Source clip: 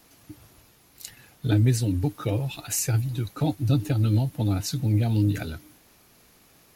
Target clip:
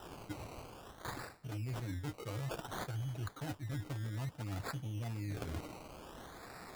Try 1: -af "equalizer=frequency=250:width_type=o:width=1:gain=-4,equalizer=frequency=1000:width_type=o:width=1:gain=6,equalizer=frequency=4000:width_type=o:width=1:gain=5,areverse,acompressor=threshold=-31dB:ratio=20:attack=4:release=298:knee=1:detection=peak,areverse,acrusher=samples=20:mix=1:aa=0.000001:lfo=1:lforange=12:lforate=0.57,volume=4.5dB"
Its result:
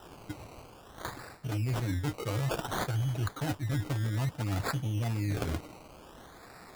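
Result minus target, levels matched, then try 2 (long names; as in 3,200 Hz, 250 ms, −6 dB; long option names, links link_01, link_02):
downward compressor: peak gain reduction −9 dB
-af "equalizer=frequency=250:width_type=o:width=1:gain=-4,equalizer=frequency=1000:width_type=o:width=1:gain=6,equalizer=frequency=4000:width_type=o:width=1:gain=5,areverse,acompressor=threshold=-40.5dB:ratio=20:attack=4:release=298:knee=1:detection=peak,areverse,acrusher=samples=20:mix=1:aa=0.000001:lfo=1:lforange=12:lforate=0.57,volume=4.5dB"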